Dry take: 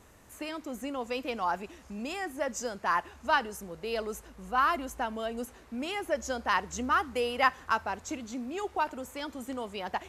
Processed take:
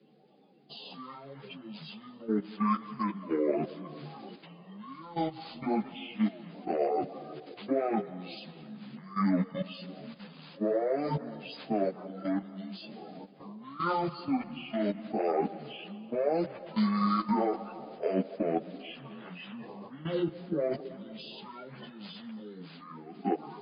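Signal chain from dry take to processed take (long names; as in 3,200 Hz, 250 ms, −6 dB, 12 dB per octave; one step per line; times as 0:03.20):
spectral magnitudes quantised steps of 30 dB
Butterworth high-pass 330 Hz 96 dB per octave
in parallel at −2 dB: downward compressor 16 to 1, threshold −42 dBFS, peak gain reduction 23 dB
on the sum: transient designer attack −3 dB, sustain +5 dB
output level in coarse steps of 17 dB
on a send at −15 dB: convolution reverb RT60 1.2 s, pre-delay 45 ms
on the sum: wrong playback speed 78 rpm record played at 33 rpm
linear-phase brick-wall low-pass 5,000 Hz
string-ensemble chorus
level +8.5 dB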